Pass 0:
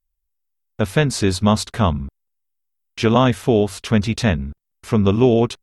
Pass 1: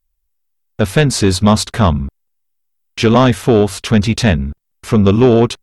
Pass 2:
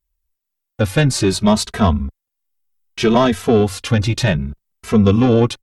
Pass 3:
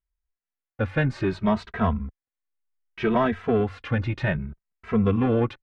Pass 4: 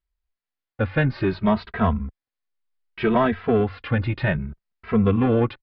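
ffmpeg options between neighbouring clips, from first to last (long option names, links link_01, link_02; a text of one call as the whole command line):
ffmpeg -i in.wav -af "acontrast=82" out.wav
ffmpeg -i in.wav -filter_complex "[0:a]asplit=2[link_01][link_02];[link_02]adelay=2.7,afreqshift=0.66[link_03];[link_01][link_03]amix=inputs=2:normalize=1" out.wav
ffmpeg -i in.wav -af "lowpass=frequency=1900:width_type=q:width=1.6,volume=-9dB" out.wav
ffmpeg -i in.wav -af "aresample=11025,aresample=44100,volume=2.5dB" out.wav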